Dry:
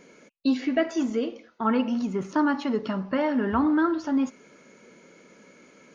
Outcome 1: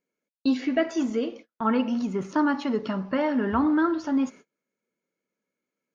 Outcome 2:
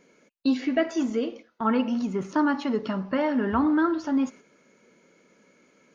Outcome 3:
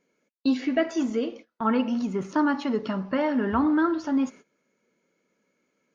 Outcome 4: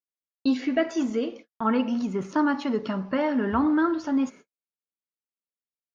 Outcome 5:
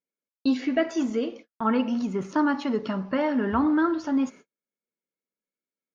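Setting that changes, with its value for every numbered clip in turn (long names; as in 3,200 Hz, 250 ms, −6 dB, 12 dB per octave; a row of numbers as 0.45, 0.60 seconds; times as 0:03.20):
noise gate, range: −33, −7, −20, −59, −45 decibels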